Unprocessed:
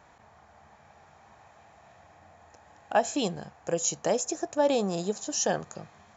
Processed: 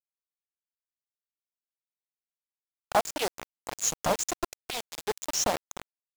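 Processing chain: harmonic-percussive separation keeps percussive; peaking EQ 1.9 kHz -2.5 dB 1.8 oct; in parallel at -3 dB: compression 6:1, threshold -39 dBFS, peak gain reduction 18.5 dB; on the sum: bit crusher 5-bit; loudspeaker Doppler distortion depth 0.8 ms

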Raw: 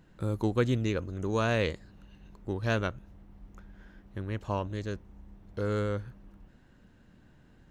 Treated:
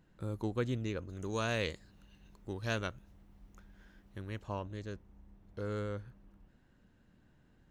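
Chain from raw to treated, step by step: 1.09–4.41 s: treble shelf 2.7 kHz +9 dB; trim -7.5 dB

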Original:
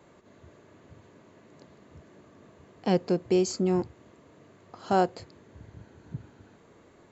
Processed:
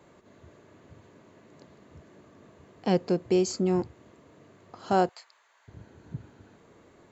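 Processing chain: 5.09–5.68 s: high-pass 880 Hz 24 dB/octave

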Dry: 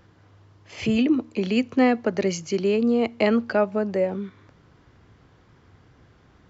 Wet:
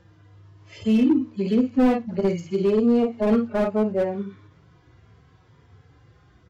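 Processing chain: harmonic-percussive separation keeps harmonic; early reflections 28 ms -12 dB, 51 ms -7 dB; slew-rate limiter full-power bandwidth 56 Hz; trim +1.5 dB

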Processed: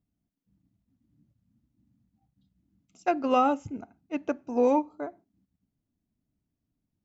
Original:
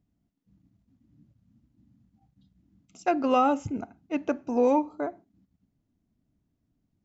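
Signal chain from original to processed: upward expansion 1.5:1, over -33 dBFS

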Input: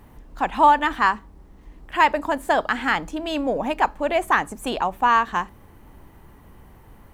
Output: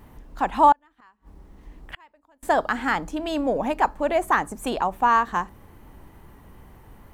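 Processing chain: wow and flutter 21 cents; 0.72–2.43 s: inverted gate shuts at -21 dBFS, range -36 dB; dynamic bell 2.8 kHz, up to -7 dB, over -36 dBFS, Q 1.1

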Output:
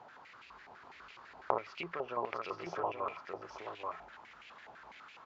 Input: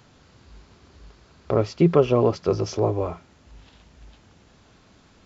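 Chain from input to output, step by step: compression 10:1, threshold -29 dBFS, peak gain reduction 18 dB; delay 828 ms -4 dB; step-sequenced band-pass 12 Hz 790–2500 Hz; trim +12 dB

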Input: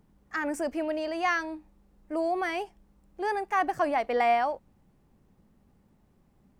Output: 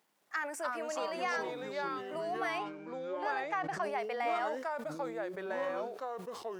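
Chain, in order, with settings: bit crusher 12-bit; compression, threshold -28 dBFS, peak gain reduction 7.5 dB; high-pass 660 Hz 12 dB/octave; ever faster or slower copies 211 ms, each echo -4 st, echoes 3; 2.58–3.83 s: low-pass 5.3 kHz 12 dB/octave; decay stretcher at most 73 dB/s; trim -2 dB

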